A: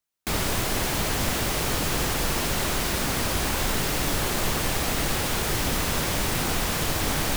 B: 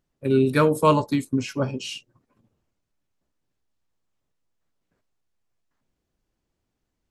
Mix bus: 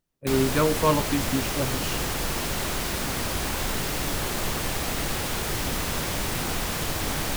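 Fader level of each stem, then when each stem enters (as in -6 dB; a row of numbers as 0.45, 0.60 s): -2.5, -4.0 dB; 0.00, 0.00 s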